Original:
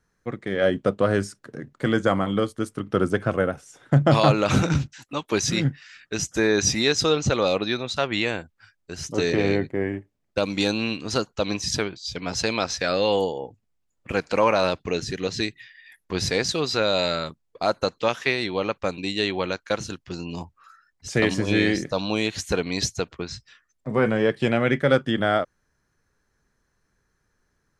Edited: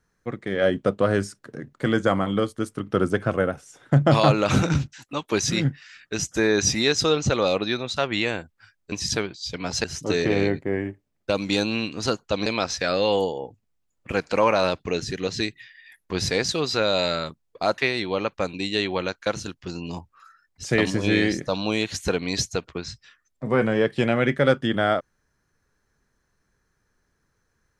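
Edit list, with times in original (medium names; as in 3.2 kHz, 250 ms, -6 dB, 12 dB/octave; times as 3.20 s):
11.54–12.46 s: move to 8.92 s
17.78–18.22 s: delete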